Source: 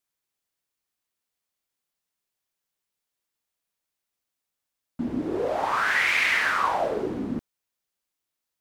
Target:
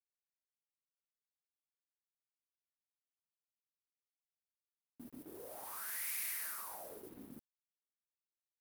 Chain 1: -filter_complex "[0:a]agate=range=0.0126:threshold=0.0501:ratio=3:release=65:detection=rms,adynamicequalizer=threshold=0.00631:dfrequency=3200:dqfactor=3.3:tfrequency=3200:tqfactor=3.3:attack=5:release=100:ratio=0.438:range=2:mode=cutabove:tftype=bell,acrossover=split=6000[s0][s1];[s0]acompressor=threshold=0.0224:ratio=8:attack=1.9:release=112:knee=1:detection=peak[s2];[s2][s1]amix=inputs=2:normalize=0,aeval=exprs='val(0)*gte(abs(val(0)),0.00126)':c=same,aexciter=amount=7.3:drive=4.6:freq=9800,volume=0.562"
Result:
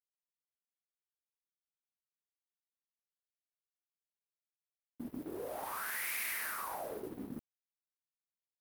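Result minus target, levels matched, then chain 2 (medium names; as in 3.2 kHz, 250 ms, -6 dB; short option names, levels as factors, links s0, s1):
compression: peak gain reduction -9.5 dB
-filter_complex "[0:a]agate=range=0.0126:threshold=0.0501:ratio=3:release=65:detection=rms,adynamicequalizer=threshold=0.00631:dfrequency=3200:dqfactor=3.3:tfrequency=3200:tqfactor=3.3:attack=5:release=100:ratio=0.438:range=2:mode=cutabove:tftype=bell,acrossover=split=6000[s0][s1];[s0]acompressor=threshold=0.00631:ratio=8:attack=1.9:release=112:knee=1:detection=peak[s2];[s2][s1]amix=inputs=2:normalize=0,aeval=exprs='val(0)*gte(abs(val(0)),0.00126)':c=same,aexciter=amount=7.3:drive=4.6:freq=9800,volume=0.562"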